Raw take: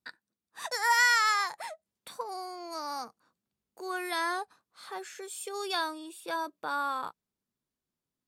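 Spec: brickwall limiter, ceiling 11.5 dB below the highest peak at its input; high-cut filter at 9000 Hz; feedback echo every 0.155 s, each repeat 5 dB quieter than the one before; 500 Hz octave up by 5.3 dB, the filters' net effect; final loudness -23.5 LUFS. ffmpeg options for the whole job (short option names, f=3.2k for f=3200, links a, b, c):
-af "lowpass=9k,equalizer=f=500:t=o:g=7.5,alimiter=level_in=0.5dB:limit=-24dB:level=0:latency=1,volume=-0.5dB,aecho=1:1:155|310|465|620|775|930|1085:0.562|0.315|0.176|0.0988|0.0553|0.031|0.0173,volume=10.5dB"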